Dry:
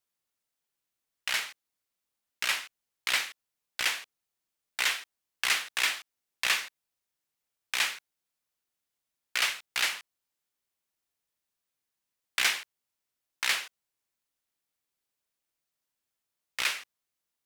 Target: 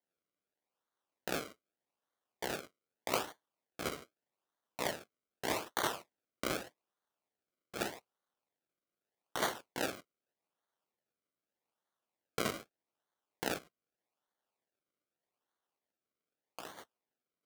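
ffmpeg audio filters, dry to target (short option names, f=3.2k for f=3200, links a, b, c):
-filter_complex "[0:a]asplit=3[a][b][c];[a]afade=t=out:st=13.57:d=0.02[d];[b]acompressor=threshold=-39dB:ratio=5,afade=t=in:st=13.57:d=0.02,afade=t=out:st=16.77:d=0.02[e];[c]afade=t=in:st=16.77:d=0.02[f];[d][e][f]amix=inputs=3:normalize=0,flanger=delay=5.2:depth=3.4:regen=-68:speed=1.6:shape=sinusoidal,acrusher=samples=34:mix=1:aa=0.000001:lfo=1:lforange=34:lforate=0.82,highpass=f=730:p=1,volume=2dB"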